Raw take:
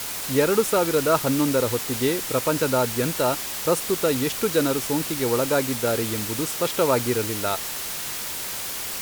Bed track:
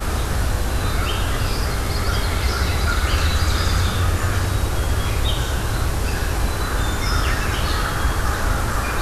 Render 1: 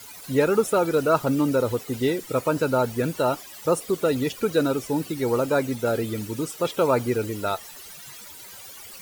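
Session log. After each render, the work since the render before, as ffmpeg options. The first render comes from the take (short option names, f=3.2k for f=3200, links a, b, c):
-af "afftdn=nr=16:nf=-31"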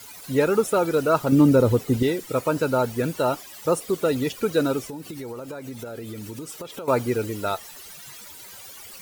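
-filter_complex "[0:a]asettb=1/sr,asplit=3[a][b][c];[a]atrim=end=1.324[d];[b]atrim=start=1.32:end=2.03,asetpts=PTS-STARTPTS,afade=t=in:d=0.004:c=qsin,afade=t=out:st=0.706:d=0.004:c=qsin,lowshelf=f=400:g=10.5[e];[c]atrim=start=2.026[f];[d][e]acrossfade=d=0.004:c1=hsin:c2=qsin[g];[g][f]acrossfade=d=0.004:c1=qsin:c2=hsin,asettb=1/sr,asplit=3[h][i][j];[h]atrim=end=4.864[k];[i]atrim=start=4.86:end=6.88,asetpts=PTS-STARTPTS,afade=t=in:d=0.004:c=qsin,afade=t=out:st=2.016:d=0.004:c=qsin,acompressor=threshold=-31dB:ratio=16:attack=3.2:release=140:knee=1:detection=peak[l];[j]atrim=start=6.876[m];[k][l]acrossfade=d=0.004:c1=hsin:c2=qsin[n];[n][m]acrossfade=d=0.004:c1=qsin:c2=hsin"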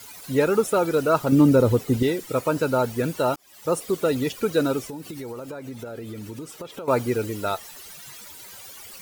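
-filter_complex "[0:a]asettb=1/sr,asplit=3[a][b][c];[a]atrim=end=5.504[d];[b]atrim=start=5.5:end=6.91,asetpts=PTS-STARTPTS,afade=t=in:d=0.004:c=qsin,afade=t=out:st=1.406:d=0.004:c=qsin,highshelf=f=4k:g=-5.5[e];[c]atrim=start=6.906[f];[d][e]acrossfade=d=0.004:c1=hsin:c2=qsin[g];[g][f]acrossfade=d=0.004:c1=qsin:c2=hsin,asplit=2[h][i];[h]atrim=end=3.36,asetpts=PTS-STARTPTS,afade=t=out:st=3.356:d=0.004:c=hsin[j];[i]atrim=start=3.36,asetpts=PTS-STARTPTS,afade=t=in:d=0.43[k];[j][k]concat=n=2:v=0:a=1"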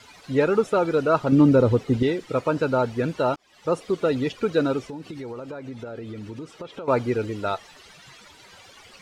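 -af "lowpass=4.2k"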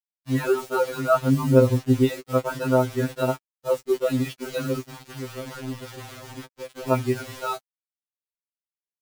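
-af "acrusher=bits=5:mix=0:aa=0.000001,afftfilt=real='re*2.45*eq(mod(b,6),0)':imag='im*2.45*eq(mod(b,6),0)':win_size=2048:overlap=0.75"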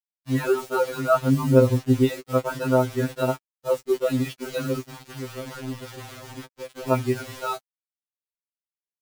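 -af anull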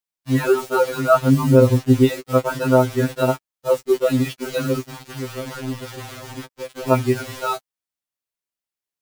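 -af "volume=5dB,alimiter=limit=-1dB:level=0:latency=1"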